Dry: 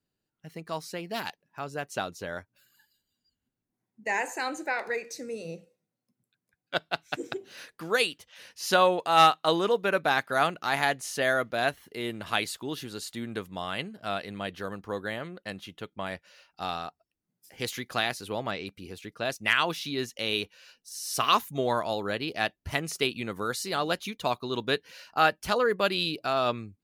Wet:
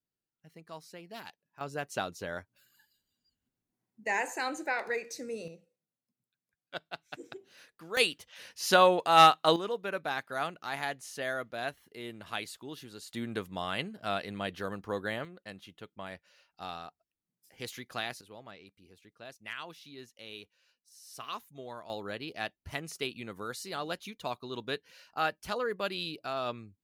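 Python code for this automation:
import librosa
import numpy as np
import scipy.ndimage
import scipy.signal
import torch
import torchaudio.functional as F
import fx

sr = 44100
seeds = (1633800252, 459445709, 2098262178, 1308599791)

y = fx.gain(x, sr, db=fx.steps((0.0, -11.5), (1.61, -2.0), (5.48, -11.0), (7.97, 0.0), (9.56, -9.0), (13.13, -1.0), (15.25, -8.0), (18.21, -17.0), (21.9, -8.0)))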